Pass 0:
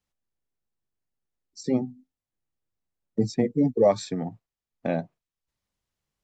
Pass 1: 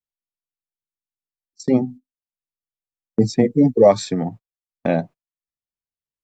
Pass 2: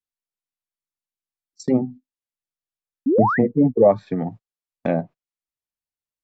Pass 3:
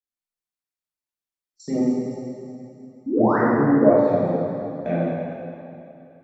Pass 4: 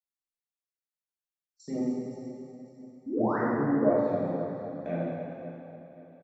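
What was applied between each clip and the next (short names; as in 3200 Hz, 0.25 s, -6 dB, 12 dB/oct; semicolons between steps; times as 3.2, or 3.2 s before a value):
gate -41 dBFS, range -25 dB; gain +7.5 dB
painted sound rise, 3.06–3.39, 240–2100 Hz -15 dBFS; treble ducked by the level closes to 1200 Hz, closed at -13.5 dBFS; gain -2 dB
plate-style reverb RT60 2.7 s, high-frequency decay 0.9×, DRR -10 dB; gain -10.5 dB
feedback echo 0.53 s, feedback 41%, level -15.5 dB; gain -9 dB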